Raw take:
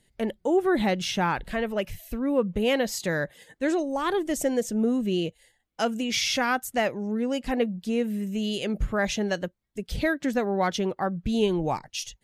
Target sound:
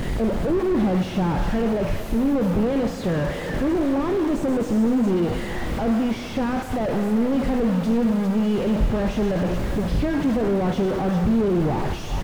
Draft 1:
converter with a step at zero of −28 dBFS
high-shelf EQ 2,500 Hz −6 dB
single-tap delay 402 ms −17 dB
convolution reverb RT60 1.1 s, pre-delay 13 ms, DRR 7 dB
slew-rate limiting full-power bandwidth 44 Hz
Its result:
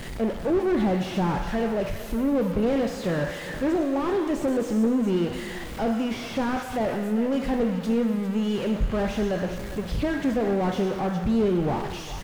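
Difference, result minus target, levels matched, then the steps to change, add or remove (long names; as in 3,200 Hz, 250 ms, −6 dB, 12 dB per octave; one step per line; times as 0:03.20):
converter with a step at zero: distortion −7 dB
change: converter with a step at zero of −17 dBFS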